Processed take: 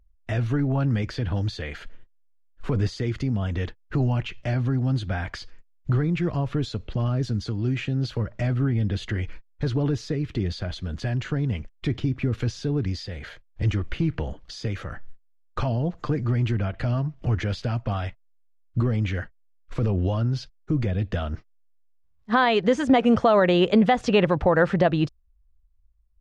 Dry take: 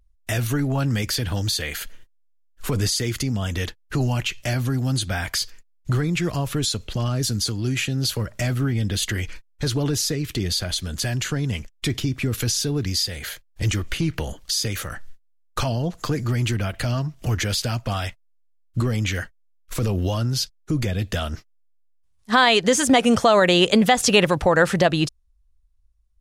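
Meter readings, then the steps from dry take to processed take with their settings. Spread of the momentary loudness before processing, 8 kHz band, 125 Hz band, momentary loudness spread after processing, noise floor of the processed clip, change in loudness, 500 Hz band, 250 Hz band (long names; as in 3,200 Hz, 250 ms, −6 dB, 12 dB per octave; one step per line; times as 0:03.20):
12 LU, below −20 dB, −0.5 dB, 13 LU, −60 dBFS, −2.5 dB, −1.5 dB, −1.0 dB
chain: head-to-tape spacing loss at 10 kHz 32 dB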